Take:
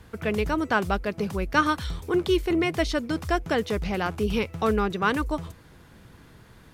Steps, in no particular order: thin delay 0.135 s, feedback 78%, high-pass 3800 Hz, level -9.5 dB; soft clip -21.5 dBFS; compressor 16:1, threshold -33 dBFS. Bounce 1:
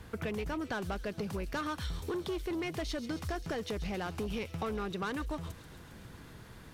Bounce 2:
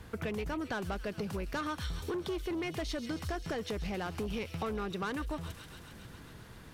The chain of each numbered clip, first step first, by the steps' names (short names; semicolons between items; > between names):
soft clip > compressor > thin delay; thin delay > soft clip > compressor